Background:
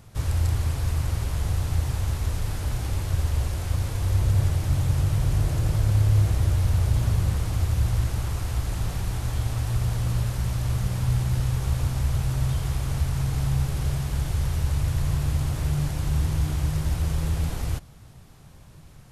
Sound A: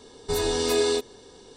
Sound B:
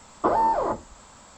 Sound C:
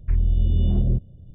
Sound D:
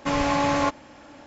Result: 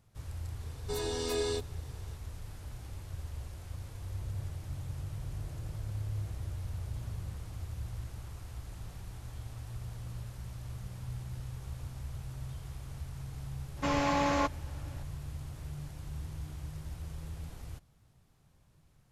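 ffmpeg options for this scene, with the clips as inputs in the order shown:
-filter_complex "[0:a]volume=-17dB[a];[1:a]atrim=end=1.56,asetpts=PTS-STARTPTS,volume=-10dB,afade=t=in:d=0.004:c=hsin,afade=t=out:st=1.556:d=0.004:c=hsin,adelay=600[b];[4:a]atrim=end=1.26,asetpts=PTS-STARTPTS,volume=-6.5dB,afade=t=in:d=0.004:c=hsin,afade=t=out:st=1.256:d=0.004:c=hsin,adelay=13770[c];[a][b][c]amix=inputs=3:normalize=0"

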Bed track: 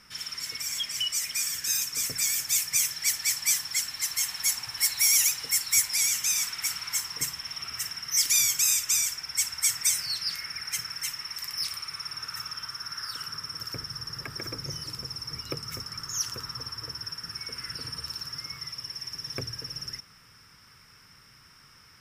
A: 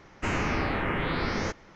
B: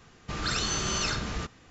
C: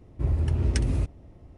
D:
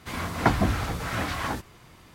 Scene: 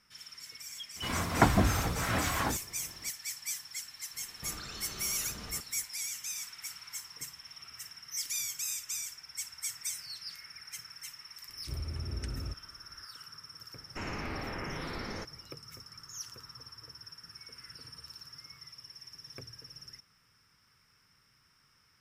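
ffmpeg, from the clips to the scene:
-filter_complex "[0:a]volume=-12.5dB[a];[2:a]acompressor=threshold=-35dB:ratio=6:attack=3.2:release=140:knee=1:detection=peak[b];[4:a]atrim=end=2.14,asetpts=PTS-STARTPTS,volume=-2dB,afade=t=in:d=0.004:c=hsin,afade=t=out:st=2.136:d=0.004:c=hsin,adelay=960[c];[b]atrim=end=1.7,asetpts=PTS-STARTPTS,volume=-6dB,afade=t=in:d=0.004:c=hsin,afade=t=out:st=1.696:d=0.004:c=hsin,adelay=4140[d];[3:a]atrim=end=1.57,asetpts=PTS-STARTPTS,volume=-13.5dB,afade=t=in:d=0.004:c=hsin,afade=t=out:st=1.566:d=0.004:c=hsin,adelay=11480[e];[1:a]atrim=end=1.75,asetpts=PTS-STARTPTS,volume=-10.5dB,afade=t=in:d=0.004:c=hsin,afade=t=out:st=1.746:d=0.004:c=hsin,adelay=13730[f];[a][c][d][e][f]amix=inputs=5:normalize=0"

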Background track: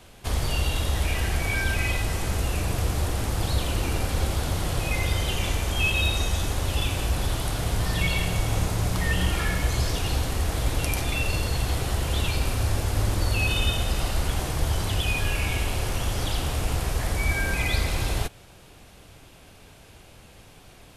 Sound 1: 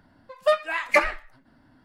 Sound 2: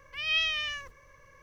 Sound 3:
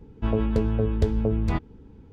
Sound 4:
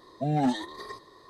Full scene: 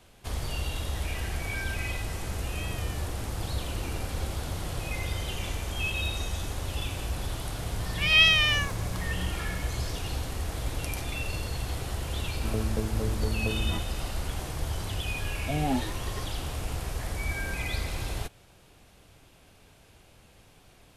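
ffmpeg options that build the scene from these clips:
-filter_complex "[2:a]asplit=2[a][b];[0:a]volume=-7dB[c];[a]lowpass=2.6k[d];[b]dynaudnorm=f=110:g=3:m=11.5dB[e];[d]atrim=end=1.42,asetpts=PTS-STARTPTS,volume=-12dB,afade=t=in:d=0.004:c=hsin,afade=t=out:st=1.416:d=0.004:c=hsin,adelay=2260[f];[e]atrim=end=1.42,asetpts=PTS-STARTPTS,volume=-3dB,afade=t=in:d=0.004:c=hsin,afade=t=out:st=1.416:d=0.004:c=hsin,adelay=7840[g];[3:a]atrim=end=2.12,asetpts=PTS-STARTPTS,volume=-8dB,afade=t=in:d=0.004:c=hsin,afade=t=out:st=2.116:d=0.004:c=hsin,adelay=12210[h];[4:a]atrim=end=1.29,asetpts=PTS-STARTPTS,volume=-3dB,afade=t=in:d=0.004:c=hsin,afade=t=out:st=1.286:d=0.004:c=hsin,adelay=15270[i];[c][f][g][h][i]amix=inputs=5:normalize=0"

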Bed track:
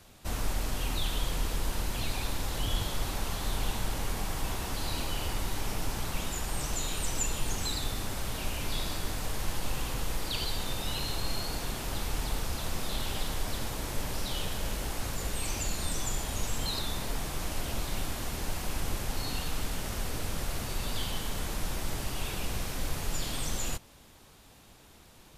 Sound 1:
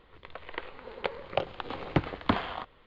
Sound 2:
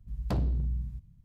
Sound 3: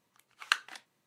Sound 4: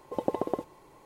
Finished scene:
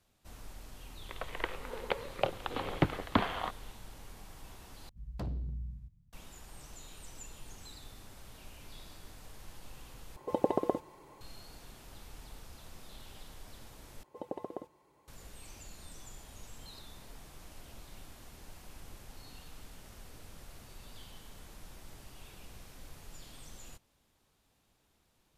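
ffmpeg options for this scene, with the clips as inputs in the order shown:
-filter_complex "[4:a]asplit=2[a][b];[0:a]volume=-17.5dB[c];[1:a]dynaudnorm=f=130:g=3:m=14.5dB[d];[b]highpass=46[e];[c]asplit=4[f][g][h][i];[f]atrim=end=4.894[j];[2:a]atrim=end=1.24,asetpts=PTS-STARTPTS,volume=-9dB[k];[g]atrim=start=6.126:end=10.164[l];[a]atrim=end=1.05[m];[h]atrim=start=11.206:end=14.034[n];[e]atrim=end=1.05,asetpts=PTS-STARTPTS,volume=-11.5dB[o];[i]atrim=start=15.076[p];[d]atrim=end=2.86,asetpts=PTS-STARTPTS,volume=-12dB,afade=t=in:d=0.004:c=hsin,afade=t=out:st=2.856:d=0.004:c=hsin,adelay=860[q];[j][k]acrossfade=d=0.004:c1=hsin:c2=hsin[r];[r][l]acrossfade=d=0.004:c1=hsin:c2=hsin[s];[s][m]acrossfade=d=0.004:c1=hsin:c2=hsin[t];[t][n]acrossfade=d=0.004:c1=hsin:c2=hsin[u];[u][o]acrossfade=d=0.004:c1=hsin:c2=hsin[v];[v][p]acrossfade=d=0.004:c1=hsin:c2=hsin[w];[w][q]amix=inputs=2:normalize=0"

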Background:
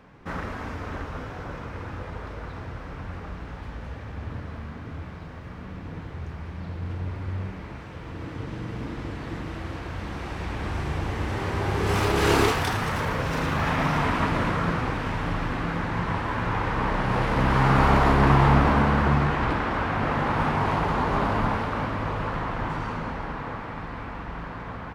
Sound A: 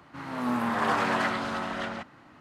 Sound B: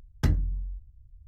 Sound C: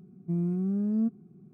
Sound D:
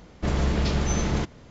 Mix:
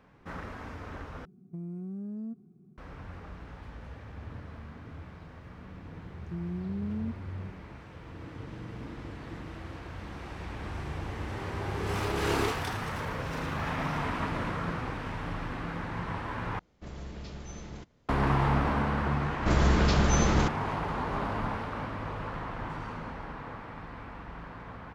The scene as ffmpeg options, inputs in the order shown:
-filter_complex "[3:a]asplit=2[a][b];[4:a]asplit=2[c][d];[0:a]volume=-8dB[e];[a]acompressor=threshold=-31dB:ratio=6:attack=3.2:release=140:knee=1:detection=peak[f];[b]alimiter=level_in=6dB:limit=-24dB:level=0:latency=1:release=71,volume=-6dB[g];[d]equalizer=f=1.3k:t=o:w=0.77:g=4[h];[e]asplit=3[i][j][k];[i]atrim=end=1.254[l];[f]atrim=end=1.53,asetpts=PTS-STARTPTS,volume=-4.5dB[m];[j]atrim=start=2.776:end=16.594[n];[c]atrim=end=1.5,asetpts=PTS-STARTPTS,volume=-18dB[o];[k]atrim=start=18.086[p];[g]atrim=end=1.53,asetpts=PTS-STARTPTS,afade=t=in:d=0.004:c=hsin,afade=t=out:st=1.526:d=0.004:c=hsin,adelay=6030[q];[h]atrim=end=1.5,asetpts=PTS-STARTPTS,afade=t=in:d=0.004:c=hsin,afade=t=out:st=1.496:d=0.004:c=hsin,adelay=19230[r];[l][m]acrossfade=d=0.004:c1=hsin:c2=hsin[s];[s][n]acrossfade=d=0.004:c1=hsin:c2=hsin[t];[t][o]acrossfade=d=0.004:c1=hsin:c2=hsin[u];[u][p]acrossfade=d=0.004:c1=hsin:c2=hsin[v];[v][q][r]amix=inputs=3:normalize=0"

